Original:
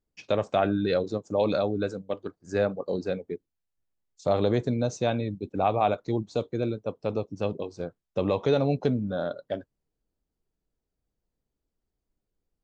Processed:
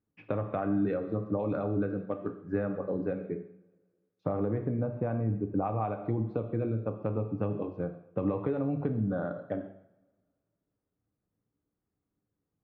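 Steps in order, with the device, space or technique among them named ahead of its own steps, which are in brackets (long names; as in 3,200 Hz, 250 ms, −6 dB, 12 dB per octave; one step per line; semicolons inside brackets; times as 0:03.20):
0:04.31–0:05.61: low-pass filter 2,600 Hz → 1,300 Hz 12 dB per octave
coupled-rooms reverb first 0.61 s, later 1.8 s, from −24 dB, DRR 5.5 dB
bass amplifier (downward compressor 6 to 1, threshold −28 dBFS, peak gain reduction 11.5 dB; loudspeaker in its box 71–2,100 Hz, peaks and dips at 110 Hz +9 dB, 180 Hz +8 dB, 300 Hz +7 dB, 1,200 Hz +5 dB)
level −2 dB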